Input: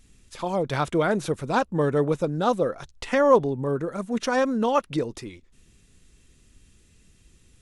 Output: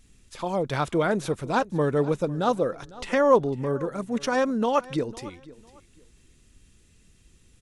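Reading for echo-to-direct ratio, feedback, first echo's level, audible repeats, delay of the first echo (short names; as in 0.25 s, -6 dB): -19.5 dB, 25%, -20.0 dB, 2, 0.502 s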